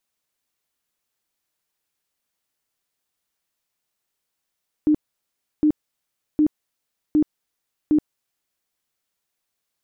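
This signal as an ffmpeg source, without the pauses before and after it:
ffmpeg -f lavfi -i "aevalsrc='0.224*sin(2*PI*303*mod(t,0.76))*lt(mod(t,0.76),23/303)':duration=3.8:sample_rate=44100" out.wav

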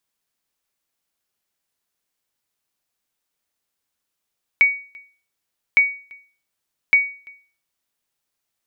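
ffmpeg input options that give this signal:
ffmpeg -f lavfi -i "aevalsrc='0.473*(sin(2*PI*2250*mod(t,1.16))*exp(-6.91*mod(t,1.16)/0.4)+0.0398*sin(2*PI*2250*max(mod(t,1.16)-0.34,0))*exp(-6.91*max(mod(t,1.16)-0.34,0)/0.4))':duration=3.48:sample_rate=44100" out.wav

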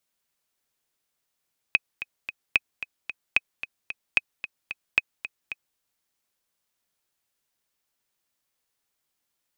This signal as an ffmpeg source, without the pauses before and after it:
ffmpeg -f lavfi -i "aevalsrc='pow(10,(-5-13.5*gte(mod(t,3*60/223),60/223))/20)*sin(2*PI*2530*mod(t,60/223))*exp(-6.91*mod(t,60/223)/0.03)':duration=4.03:sample_rate=44100" out.wav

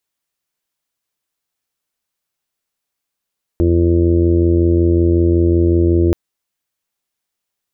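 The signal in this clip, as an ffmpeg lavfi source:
ffmpeg -f lavfi -i "aevalsrc='0.224*sin(2*PI*85.4*t)+0.0562*sin(2*PI*170.8*t)+0.0708*sin(2*PI*256.2*t)+0.224*sin(2*PI*341.6*t)+0.0562*sin(2*PI*427*t)+0.0376*sin(2*PI*512.4*t)+0.0251*sin(2*PI*597.8*t)':duration=2.53:sample_rate=44100" out.wav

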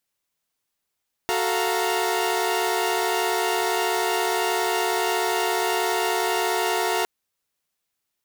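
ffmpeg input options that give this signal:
ffmpeg -f lavfi -i "aevalsrc='0.0596*((2*mod(369.99*t,1)-1)+(2*mod(440*t,1)-1)+(2*mod(698.46*t,1)-1)+(2*mod(932.33*t,1)-1))':duration=5.76:sample_rate=44100" out.wav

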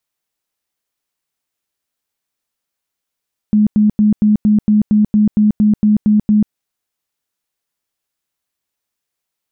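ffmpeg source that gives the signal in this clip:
ffmpeg -f lavfi -i "aevalsrc='0.422*sin(2*PI*211*mod(t,0.23))*lt(mod(t,0.23),29/211)':duration=2.99:sample_rate=44100" out.wav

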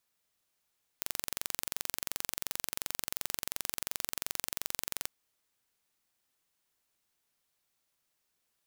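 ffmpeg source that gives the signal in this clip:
ffmpeg -f lavfi -i "aevalsrc='0.501*eq(mod(n,1934),0)':duration=4.06:sample_rate=44100" out.wav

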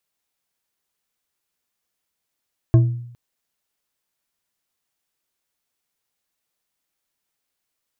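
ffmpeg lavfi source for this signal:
ffmpeg -f lavfi -i "aevalsrc='0.447*pow(10,-3*t/0.7)*sin(2*PI*120*t)+0.158*pow(10,-3*t/0.344)*sin(2*PI*330.8*t)+0.0562*pow(10,-3*t/0.215)*sin(2*PI*648.5*t)+0.02*pow(10,-3*t/0.151)*sin(2*PI*1072*t)+0.00708*pow(10,-3*t/0.114)*sin(2*PI*1600.8*t)':duration=0.41:sample_rate=44100" out.wav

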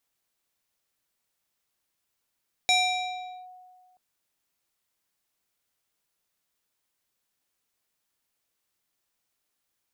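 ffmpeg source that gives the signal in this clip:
ffmpeg -f lavfi -i "aevalsrc='0.141*pow(10,-3*t/1.77)*sin(2*PI*734*t+1.6*clip(1-t/0.78,0,1)*sin(2*PI*4.21*734*t))':duration=1.28:sample_rate=44100" out.wav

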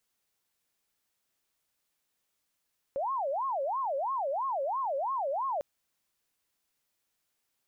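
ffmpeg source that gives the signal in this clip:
ffmpeg -f lavfi -i "aevalsrc='0.0376*sin(2*PI*(814*t-276/(2*PI*3)*sin(2*PI*3*t)))':duration=2.65:sample_rate=44100" out.wav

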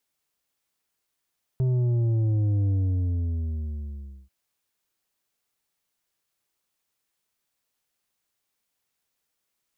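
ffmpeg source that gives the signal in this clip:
ffmpeg -f lavfi -i "aevalsrc='0.0891*clip((2.69-t)/1.61,0,1)*tanh(2.24*sin(2*PI*130*2.69/log(65/130)*(exp(log(65/130)*t/2.69)-1)))/tanh(2.24)':duration=2.69:sample_rate=44100" out.wav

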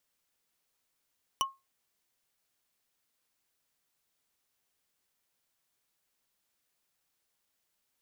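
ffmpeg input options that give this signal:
ffmpeg -f lavfi -i "aevalsrc='0.0708*pow(10,-3*t/0.22)*sin(2*PI*1080*t)+0.0631*pow(10,-3*t/0.065)*sin(2*PI*2977.6*t)+0.0562*pow(10,-3*t/0.029)*sin(2*PI*5836.3*t)+0.0501*pow(10,-3*t/0.016)*sin(2*PI*9647.6*t)+0.0447*pow(10,-3*t/0.01)*sin(2*PI*14407.2*t)':duration=0.45:sample_rate=44100" out.wav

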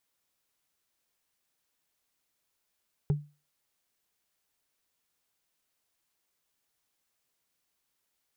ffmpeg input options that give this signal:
ffmpeg -f lavfi -i "aevalsrc='0.106*pow(10,-3*t/0.3)*sin(2*PI*147*t)+0.0335*pow(10,-3*t/0.089)*sin(2*PI*405.3*t)+0.0106*pow(10,-3*t/0.04)*sin(2*PI*794.4*t)+0.00335*pow(10,-3*t/0.022)*sin(2*PI*1313.2*t)+0.00106*pow(10,-3*t/0.013)*sin(2*PI*1961*t)':duration=0.45:sample_rate=44100" out.wav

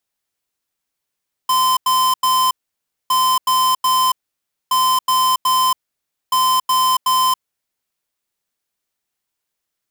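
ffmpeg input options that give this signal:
ffmpeg -f lavfi -i "aevalsrc='0.178*(2*lt(mod(1030*t,1),0.5)-1)*clip(min(mod(mod(t,1.61),0.37),0.28-mod(mod(t,1.61),0.37))/0.005,0,1)*lt(mod(t,1.61),1.11)':duration=6.44:sample_rate=44100" out.wav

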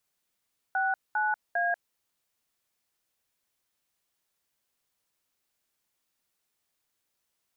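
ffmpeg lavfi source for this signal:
ffmpeg -f lavfi -i "aevalsrc='0.0447*clip(min(mod(t,0.401),0.19-mod(t,0.401))/0.002,0,1)*(eq(floor(t/0.401),0)*(sin(2*PI*770*mod(t,0.401))+sin(2*PI*1477*mod(t,0.401)))+eq(floor(t/0.401),1)*(sin(2*PI*852*mod(t,0.401))+sin(2*PI*1477*mod(t,0.401)))+eq(floor(t/0.401),2)*(sin(2*PI*697*mod(t,0.401))+sin(2*PI*1633*mod(t,0.401))))':duration=1.203:sample_rate=44100" out.wav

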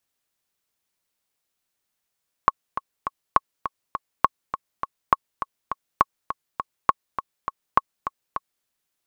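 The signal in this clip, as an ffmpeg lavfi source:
ffmpeg -f lavfi -i "aevalsrc='pow(10,(-1.5-11*gte(mod(t,3*60/204),60/204))/20)*sin(2*PI*1100*mod(t,60/204))*exp(-6.91*mod(t,60/204)/0.03)':duration=6.17:sample_rate=44100" out.wav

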